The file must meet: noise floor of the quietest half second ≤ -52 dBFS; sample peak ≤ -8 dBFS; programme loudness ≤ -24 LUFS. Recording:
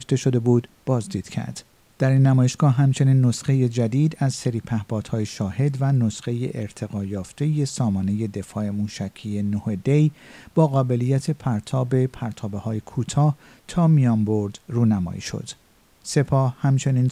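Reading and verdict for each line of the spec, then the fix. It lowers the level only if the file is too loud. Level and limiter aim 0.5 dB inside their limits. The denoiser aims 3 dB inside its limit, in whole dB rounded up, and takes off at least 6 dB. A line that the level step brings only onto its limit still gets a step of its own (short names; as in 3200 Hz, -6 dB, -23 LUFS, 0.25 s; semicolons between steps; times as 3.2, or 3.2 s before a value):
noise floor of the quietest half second -57 dBFS: OK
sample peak -7.0 dBFS: fail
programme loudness -22.5 LUFS: fail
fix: gain -2 dB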